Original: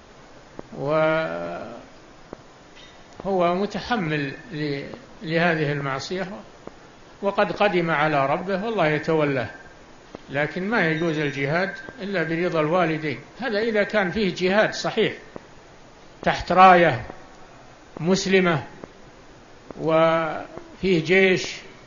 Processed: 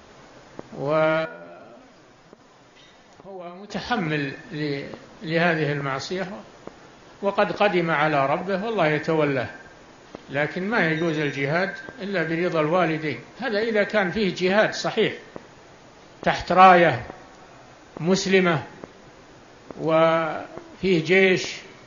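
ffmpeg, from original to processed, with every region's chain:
-filter_complex "[0:a]asettb=1/sr,asplit=3[s0][s1][s2];[s0]atrim=end=1.254[s3];[s1]atrim=start=1.25:end=3.7,asetpts=PTS-STARTPTS,afade=t=in:d=0.004:c=qsin,afade=t=out:st=2.446:d=0.004:c=qsin,acompressor=threshold=0.01:ratio=2:attack=3.2:release=140:knee=1:detection=peak,flanger=delay=3.9:depth=4.4:regen=44:speed=1.7:shape=sinusoidal[s4];[s2]atrim=start=3.696[s5];[s3][s4]acrossfade=d=0.004:c1=hsin:c2=qsin[s6];[s6][s5]acrossfade=d=0.004:c1=qsin:c2=hsin,highpass=f=64:p=1,bandreject=f=239.6:t=h:w=4,bandreject=f=479.2:t=h:w=4,bandreject=f=718.8:t=h:w=4,bandreject=f=958.4:t=h:w=4,bandreject=f=1198:t=h:w=4,bandreject=f=1437.6:t=h:w=4,bandreject=f=1677.2:t=h:w=4,bandreject=f=1916.8:t=h:w=4,bandreject=f=2156.4:t=h:w=4,bandreject=f=2396:t=h:w=4,bandreject=f=2635.6:t=h:w=4,bandreject=f=2875.2:t=h:w=4,bandreject=f=3114.8:t=h:w=4,bandreject=f=3354.4:t=h:w=4,bandreject=f=3594:t=h:w=4,bandreject=f=3833.6:t=h:w=4,bandreject=f=4073.2:t=h:w=4,bandreject=f=4312.8:t=h:w=4,bandreject=f=4552.4:t=h:w=4,bandreject=f=4792:t=h:w=4,bandreject=f=5031.6:t=h:w=4,bandreject=f=5271.2:t=h:w=4,bandreject=f=5510.8:t=h:w=4,bandreject=f=5750.4:t=h:w=4,bandreject=f=5990:t=h:w=4,bandreject=f=6229.6:t=h:w=4,bandreject=f=6469.2:t=h:w=4,bandreject=f=6708.8:t=h:w=4,bandreject=f=6948.4:t=h:w=4,bandreject=f=7188:t=h:w=4,bandreject=f=7427.6:t=h:w=4"

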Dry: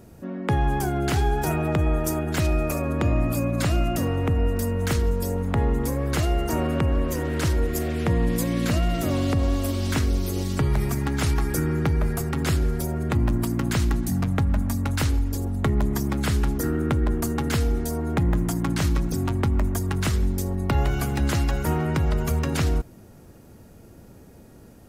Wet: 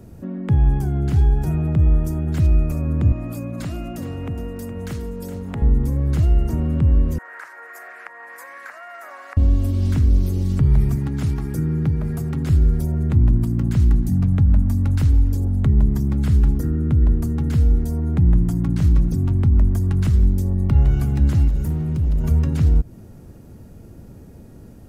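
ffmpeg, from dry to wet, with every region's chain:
-filter_complex "[0:a]asettb=1/sr,asplit=3[s0][s1][s2];[s0]atrim=end=3.124[s3];[s1]atrim=start=3.12:end=5.62,asetpts=PTS-STARTPTS,afade=t=in:d=0.004:c=qsin,afade=t=out:st=2.496:d=0.004:c=qsin,highpass=f=390:p=1,aecho=1:1:416:0.251,atrim=end_sample=110250[s4];[s2]atrim=start=5.616[s5];[s3][s4]acrossfade=d=0.004:c1=hsin:c2=qsin[s6];[s6][s5]acrossfade=d=0.004:c1=qsin:c2=hsin,asettb=1/sr,asplit=3[s7][s8][s9];[s7]atrim=end=7.184[s10];[s8]atrim=start=7.18:end=9.37,asetpts=PTS-STARTPTS,afade=t=in:d=0.004:c=qsin,afade=t=out:st=2.186:d=0.004:c=qsin,highpass=f=820:w=0.5412,highpass=f=820:w=1.3066,highshelf=f=2400:t=q:w=3:g=-11[s11];[s9]atrim=start=9.366[s12];[s10][s11]acrossfade=d=0.004:c1=hsin:c2=qsin[s13];[s13][s12]acrossfade=d=0.004:c1=qsin:c2=hsin,asettb=1/sr,asplit=3[s14][s15][s16];[s14]atrim=end=10.964[s17];[s15]atrim=start=10.96:end=12.5,asetpts=PTS-STARTPTS,afade=t=in:d=0.004:c=qsin,afade=t=out:st=1.536:d=0.004:c=qsin,highpass=100,aeval=exprs='sgn(val(0))*max(abs(val(0))-0.00282,0)':c=same[s18];[s16]atrim=start=12.496[s19];[s17][s18]acrossfade=d=0.004:c1=hsin:c2=qsin[s20];[s20][s19]acrossfade=d=0.004:c1=qsin:c2=hsin,asettb=1/sr,asplit=3[s21][s22][s23];[s21]atrim=end=21.484[s24];[s22]atrim=start=21.48:end=22.24,asetpts=PTS-STARTPTS,afade=t=in:d=0.004:c=qsin,afade=t=out:st=0.756:d=0.004:c=qsin,volume=14.1,asoftclip=hard,volume=0.0708,equalizer=f=1200:w=0.37:g=-11[s25];[s23]atrim=start=22.236[s26];[s24][s25]acrossfade=d=0.004:c1=hsin:c2=qsin[s27];[s27][s26]acrossfade=d=0.004:c1=qsin:c2=hsin,lowshelf=f=340:g=10,acrossover=split=240[s28][s29];[s29]acompressor=threshold=0.0224:ratio=5[s30];[s28][s30]amix=inputs=2:normalize=0,volume=0.841"

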